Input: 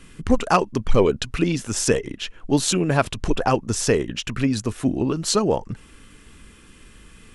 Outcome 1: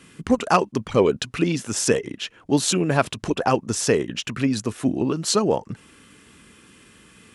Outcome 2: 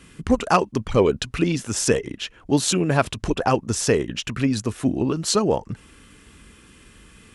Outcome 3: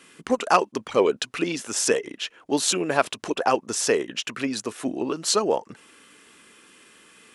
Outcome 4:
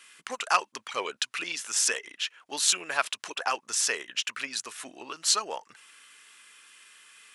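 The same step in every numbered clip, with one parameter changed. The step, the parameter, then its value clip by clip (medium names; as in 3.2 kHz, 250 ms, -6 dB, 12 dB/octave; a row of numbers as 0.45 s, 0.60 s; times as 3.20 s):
high-pass, cutoff frequency: 120 Hz, 42 Hz, 360 Hz, 1.3 kHz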